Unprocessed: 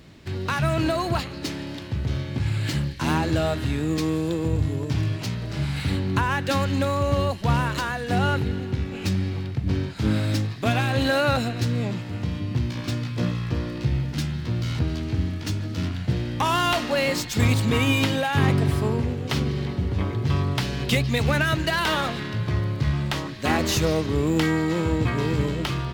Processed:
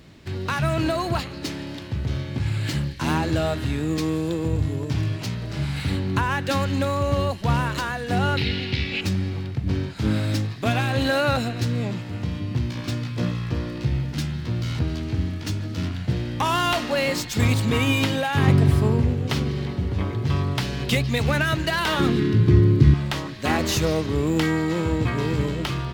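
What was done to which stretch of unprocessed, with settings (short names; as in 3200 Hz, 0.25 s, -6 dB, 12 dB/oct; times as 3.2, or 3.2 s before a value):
8.37–9.01 band shelf 3200 Hz +16 dB
18.47–19.33 low shelf 230 Hz +6.5 dB
21.99–22.94 resonant low shelf 470 Hz +8.5 dB, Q 3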